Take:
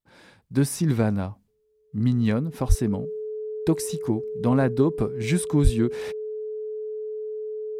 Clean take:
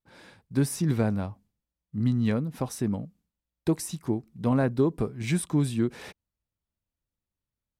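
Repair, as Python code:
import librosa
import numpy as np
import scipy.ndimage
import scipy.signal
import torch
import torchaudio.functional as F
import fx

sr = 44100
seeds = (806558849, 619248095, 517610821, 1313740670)

y = fx.notch(x, sr, hz=430.0, q=30.0)
y = fx.fix_deplosive(y, sr, at_s=(2.68, 5.63))
y = fx.fix_level(y, sr, at_s=0.42, step_db=-3.0)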